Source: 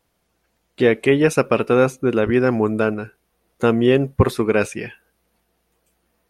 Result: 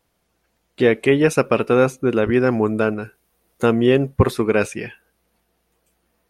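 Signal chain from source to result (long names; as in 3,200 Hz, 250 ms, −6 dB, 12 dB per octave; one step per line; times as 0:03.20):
0:03.02–0:03.66: high-shelf EQ 7,400 Hz +8 dB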